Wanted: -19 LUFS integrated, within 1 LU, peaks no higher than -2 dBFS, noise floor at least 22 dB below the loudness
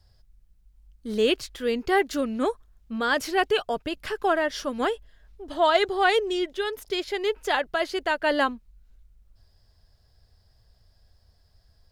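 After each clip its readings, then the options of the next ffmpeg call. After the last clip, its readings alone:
loudness -25.5 LUFS; peak -7.0 dBFS; loudness target -19.0 LUFS
-> -af "volume=6.5dB,alimiter=limit=-2dB:level=0:latency=1"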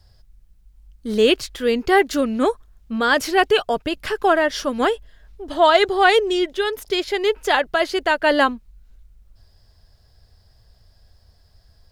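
loudness -19.0 LUFS; peak -2.0 dBFS; noise floor -56 dBFS

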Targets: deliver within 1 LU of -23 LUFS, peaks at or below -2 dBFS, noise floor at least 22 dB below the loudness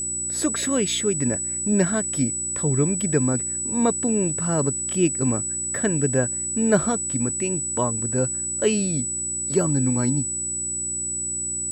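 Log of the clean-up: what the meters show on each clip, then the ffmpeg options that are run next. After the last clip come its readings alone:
hum 60 Hz; harmonics up to 360 Hz; hum level -40 dBFS; steady tone 7900 Hz; tone level -25 dBFS; loudness -22.0 LUFS; peak -5.0 dBFS; loudness target -23.0 LUFS
-> -af "bandreject=f=60:t=h:w=4,bandreject=f=120:t=h:w=4,bandreject=f=180:t=h:w=4,bandreject=f=240:t=h:w=4,bandreject=f=300:t=h:w=4,bandreject=f=360:t=h:w=4"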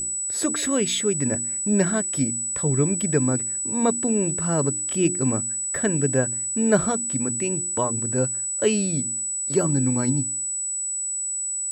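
hum none; steady tone 7900 Hz; tone level -25 dBFS
-> -af "bandreject=f=7.9k:w=30"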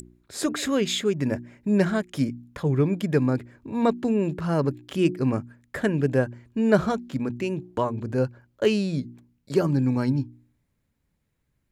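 steady tone none; loudness -25.5 LUFS; peak -6.5 dBFS; loudness target -23.0 LUFS
-> -af "volume=2.5dB"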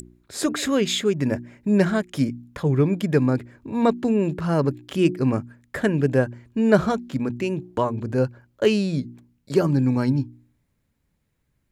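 loudness -23.0 LUFS; peak -4.0 dBFS; noise floor -71 dBFS

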